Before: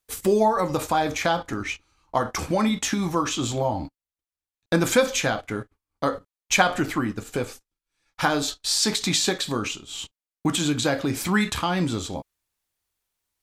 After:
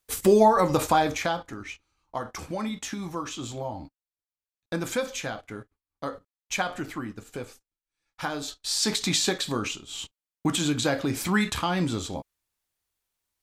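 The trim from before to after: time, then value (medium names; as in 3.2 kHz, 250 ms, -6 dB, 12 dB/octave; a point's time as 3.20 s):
0.92 s +2 dB
1.54 s -9 dB
8.38 s -9 dB
8.92 s -2 dB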